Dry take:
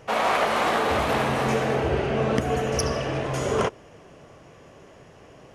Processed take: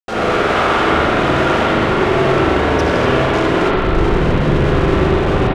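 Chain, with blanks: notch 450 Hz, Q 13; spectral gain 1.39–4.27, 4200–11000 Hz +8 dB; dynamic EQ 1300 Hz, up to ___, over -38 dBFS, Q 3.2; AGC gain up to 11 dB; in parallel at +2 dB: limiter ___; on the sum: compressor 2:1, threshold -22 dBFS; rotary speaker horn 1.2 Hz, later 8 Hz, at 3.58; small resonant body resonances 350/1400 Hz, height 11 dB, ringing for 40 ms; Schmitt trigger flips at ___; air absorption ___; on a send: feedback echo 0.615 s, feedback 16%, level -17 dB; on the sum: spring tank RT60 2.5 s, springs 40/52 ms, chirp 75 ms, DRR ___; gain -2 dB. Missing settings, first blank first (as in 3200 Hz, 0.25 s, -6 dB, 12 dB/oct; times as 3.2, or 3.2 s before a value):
+5 dB, -11.5 dBFS, -29.5 dBFS, 85 m, -9 dB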